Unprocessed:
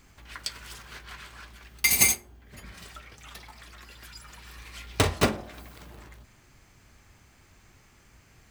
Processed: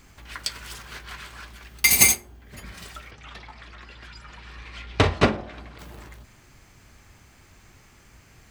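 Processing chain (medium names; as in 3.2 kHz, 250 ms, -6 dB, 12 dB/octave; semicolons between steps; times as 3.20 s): 3.11–5.79 s: low-pass 3.8 kHz 12 dB/octave; trim +4.5 dB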